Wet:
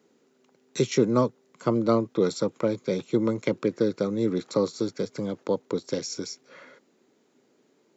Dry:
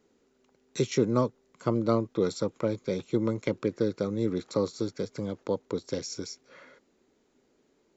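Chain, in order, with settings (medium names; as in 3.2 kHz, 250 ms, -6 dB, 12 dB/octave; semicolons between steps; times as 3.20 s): high-pass 120 Hz 24 dB/octave; trim +3.5 dB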